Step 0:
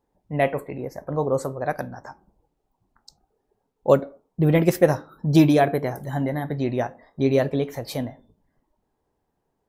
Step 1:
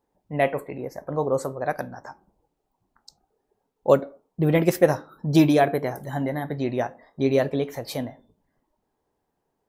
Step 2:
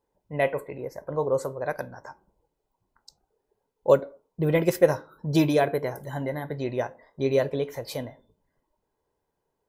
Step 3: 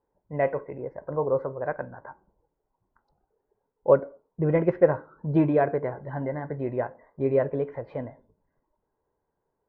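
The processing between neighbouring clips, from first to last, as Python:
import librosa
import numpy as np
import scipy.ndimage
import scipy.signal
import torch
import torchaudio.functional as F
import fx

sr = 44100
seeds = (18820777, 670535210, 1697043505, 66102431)

y1 = fx.low_shelf(x, sr, hz=150.0, db=-6.5)
y2 = y1 + 0.36 * np.pad(y1, (int(2.0 * sr / 1000.0), 0))[:len(y1)]
y2 = y2 * librosa.db_to_amplitude(-3.0)
y3 = scipy.signal.sosfilt(scipy.signal.butter(4, 1800.0, 'lowpass', fs=sr, output='sos'), y2)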